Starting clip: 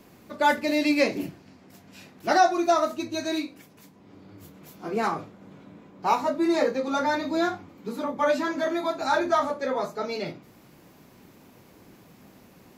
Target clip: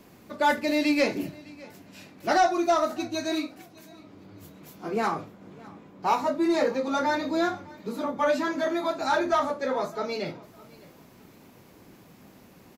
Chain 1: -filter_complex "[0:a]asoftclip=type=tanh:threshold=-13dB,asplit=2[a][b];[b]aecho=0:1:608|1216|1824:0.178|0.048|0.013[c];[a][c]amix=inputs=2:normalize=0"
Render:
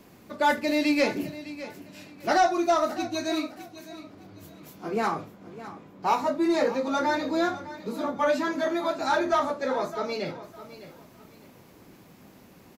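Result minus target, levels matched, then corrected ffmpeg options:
echo-to-direct +7.5 dB
-filter_complex "[0:a]asoftclip=type=tanh:threshold=-13dB,asplit=2[a][b];[b]aecho=0:1:608|1216:0.075|0.0202[c];[a][c]amix=inputs=2:normalize=0"

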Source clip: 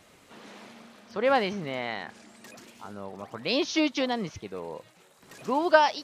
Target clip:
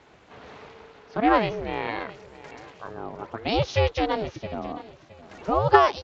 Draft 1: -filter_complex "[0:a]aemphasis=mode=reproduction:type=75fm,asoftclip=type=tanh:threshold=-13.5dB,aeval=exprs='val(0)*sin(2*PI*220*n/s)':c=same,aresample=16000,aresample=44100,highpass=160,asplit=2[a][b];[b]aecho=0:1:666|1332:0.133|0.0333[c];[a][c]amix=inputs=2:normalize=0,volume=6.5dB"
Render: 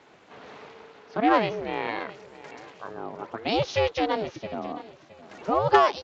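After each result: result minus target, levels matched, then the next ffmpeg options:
soft clip: distortion +10 dB; 125 Hz band -5.0 dB
-filter_complex "[0:a]aemphasis=mode=reproduction:type=75fm,asoftclip=type=tanh:threshold=-6.5dB,aeval=exprs='val(0)*sin(2*PI*220*n/s)':c=same,aresample=16000,aresample=44100,highpass=160,asplit=2[a][b];[b]aecho=0:1:666|1332:0.133|0.0333[c];[a][c]amix=inputs=2:normalize=0,volume=6.5dB"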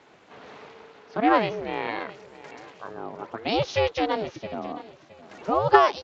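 125 Hz band -6.0 dB
-filter_complex "[0:a]aemphasis=mode=reproduction:type=75fm,asoftclip=type=tanh:threshold=-6.5dB,aeval=exprs='val(0)*sin(2*PI*220*n/s)':c=same,aresample=16000,aresample=44100,highpass=64,asplit=2[a][b];[b]aecho=0:1:666|1332:0.133|0.0333[c];[a][c]amix=inputs=2:normalize=0,volume=6.5dB"

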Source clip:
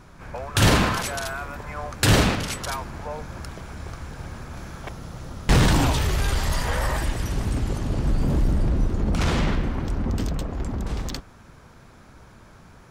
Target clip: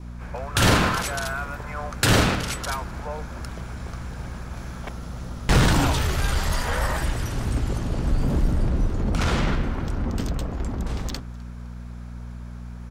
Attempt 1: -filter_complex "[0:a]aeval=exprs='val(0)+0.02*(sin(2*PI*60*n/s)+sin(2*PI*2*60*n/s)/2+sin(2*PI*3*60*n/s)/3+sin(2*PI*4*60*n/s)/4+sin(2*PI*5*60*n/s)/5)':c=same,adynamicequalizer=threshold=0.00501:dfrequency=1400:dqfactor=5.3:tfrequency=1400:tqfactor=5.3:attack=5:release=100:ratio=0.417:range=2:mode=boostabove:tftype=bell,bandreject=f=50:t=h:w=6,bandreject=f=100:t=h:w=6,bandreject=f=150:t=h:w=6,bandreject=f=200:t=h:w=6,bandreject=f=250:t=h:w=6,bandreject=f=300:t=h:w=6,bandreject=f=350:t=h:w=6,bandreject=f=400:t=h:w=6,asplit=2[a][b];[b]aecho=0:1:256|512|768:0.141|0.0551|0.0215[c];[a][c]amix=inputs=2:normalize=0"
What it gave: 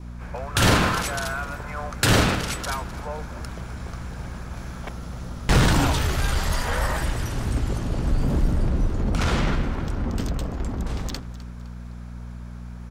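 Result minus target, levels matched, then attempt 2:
echo-to-direct +9 dB
-filter_complex "[0:a]aeval=exprs='val(0)+0.02*(sin(2*PI*60*n/s)+sin(2*PI*2*60*n/s)/2+sin(2*PI*3*60*n/s)/3+sin(2*PI*4*60*n/s)/4+sin(2*PI*5*60*n/s)/5)':c=same,adynamicequalizer=threshold=0.00501:dfrequency=1400:dqfactor=5.3:tfrequency=1400:tqfactor=5.3:attack=5:release=100:ratio=0.417:range=2:mode=boostabove:tftype=bell,bandreject=f=50:t=h:w=6,bandreject=f=100:t=h:w=6,bandreject=f=150:t=h:w=6,bandreject=f=200:t=h:w=6,bandreject=f=250:t=h:w=6,bandreject=f=300:t=h:w=6,bandreject=f=350:t=h:w=6,bandreject=f=400:t=h:w=6,asplit=2[a][b];[b]aecho=0:1:256|512:0.0501|0.0195[c];[a][c]amix=inputs=2:normalize=0"

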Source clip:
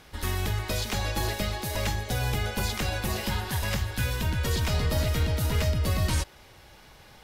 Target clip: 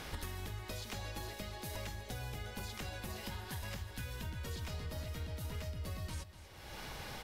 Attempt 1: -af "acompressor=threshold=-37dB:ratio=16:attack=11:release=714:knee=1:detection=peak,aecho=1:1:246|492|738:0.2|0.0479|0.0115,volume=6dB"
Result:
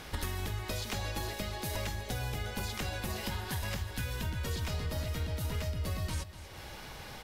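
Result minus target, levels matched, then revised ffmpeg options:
compressor: peak gain reduction -7 dB
-af "acompressor=threshold=-44.5dB:ratio=16:attack=11:release=714:knee=1:detection=peak,aecho=1:1:246|492|738:0.2|0.0479|0.0115,volume=6dB"

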